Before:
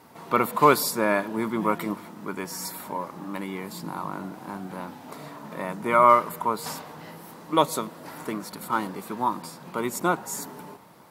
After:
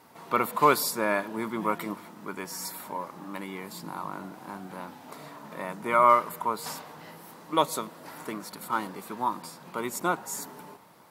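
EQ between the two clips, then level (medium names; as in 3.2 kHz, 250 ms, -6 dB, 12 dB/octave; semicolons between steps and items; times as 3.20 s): bass shelf 450 Hz -4.5 dB; -2.0 dB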